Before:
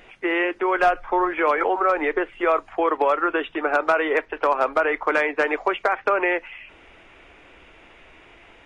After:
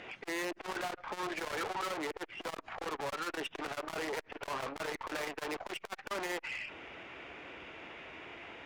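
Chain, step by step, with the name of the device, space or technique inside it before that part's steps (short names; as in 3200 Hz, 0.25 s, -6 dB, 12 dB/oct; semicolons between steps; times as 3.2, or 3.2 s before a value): valve radio (BPF 100–5600 Hz; tube stage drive 35 dB, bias 0.3; core saturation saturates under 540 Hz); gain +2.5 dB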